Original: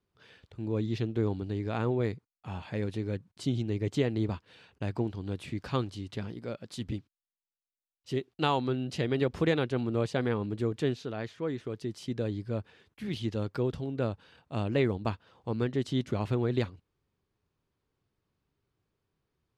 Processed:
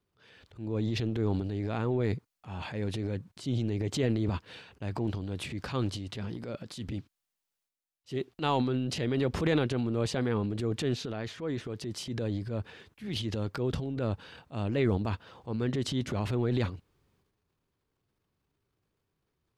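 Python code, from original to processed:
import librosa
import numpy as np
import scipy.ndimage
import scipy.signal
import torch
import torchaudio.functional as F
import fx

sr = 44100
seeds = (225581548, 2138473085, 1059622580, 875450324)

y = fx.transient(x, sr, attack_db=-5, sustain_db=9)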